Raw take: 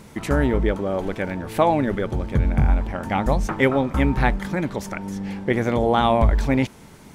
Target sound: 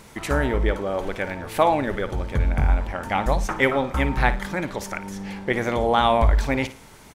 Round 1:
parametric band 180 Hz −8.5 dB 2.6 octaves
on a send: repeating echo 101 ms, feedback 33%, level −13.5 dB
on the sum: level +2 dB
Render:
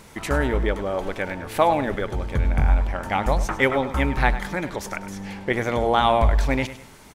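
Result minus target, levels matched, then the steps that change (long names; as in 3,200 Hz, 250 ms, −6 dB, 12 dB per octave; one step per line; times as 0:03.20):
echo 45 ms late
change: repeating echo 56 ms, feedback 33%, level −13.5 dB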